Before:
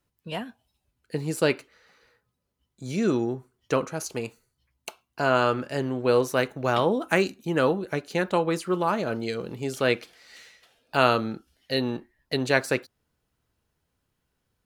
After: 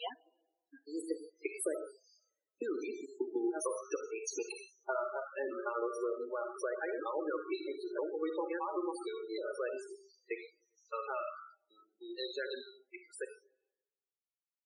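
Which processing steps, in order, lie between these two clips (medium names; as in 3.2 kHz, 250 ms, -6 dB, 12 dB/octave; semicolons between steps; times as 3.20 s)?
slices played last to first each 150 ms, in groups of 3; Doppler pass-by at 3.32 s, 11 m/s, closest 4.9 m; compression 16:1, threshold -45 dBFS, peak gain reduction 23 dB; peaking EQ 4.2 kHz +3 dB 1.1 oct; algorithmic reverb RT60 1.1 s, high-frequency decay 0.85×, pre-delay 15 ms, DRR 3.5 dB; spectral noise reduction 22 dB; elliptic high-pass 320 Hz, stop band 70 dB; peaking EQ 10 kHz +8 dB 0.83 oct; loudest bins only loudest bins 16; trim +14.5 dB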